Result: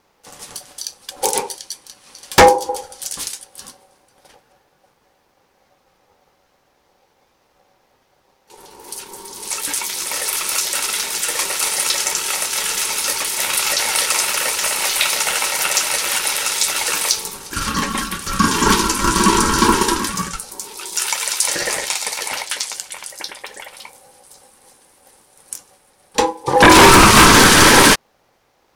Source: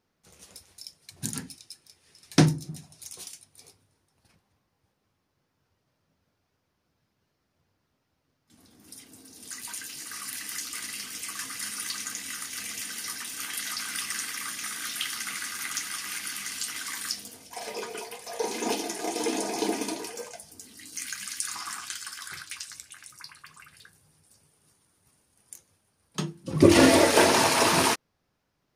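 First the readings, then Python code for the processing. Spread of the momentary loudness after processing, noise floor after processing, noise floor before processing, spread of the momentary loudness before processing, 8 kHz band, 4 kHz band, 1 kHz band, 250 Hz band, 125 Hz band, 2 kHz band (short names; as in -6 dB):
23 LU, -61 dBFS, -77 dBFS, 23 LU, +14.5 dB, +14.5 dB, +16.0 dB, +8.0 dB, +8.0 dB, +15.0 dB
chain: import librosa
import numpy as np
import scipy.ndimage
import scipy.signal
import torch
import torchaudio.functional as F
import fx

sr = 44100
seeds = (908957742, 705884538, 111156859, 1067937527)

y = x * np.sin(2.0 * np.pi * 660.0 * np.arange(len(x)) / sr)
y = fx.fold_sine(y, sr, drive_db=13, ceiling_db=-3.5)
y = y * 10.0 ** (1.5 / 20.0)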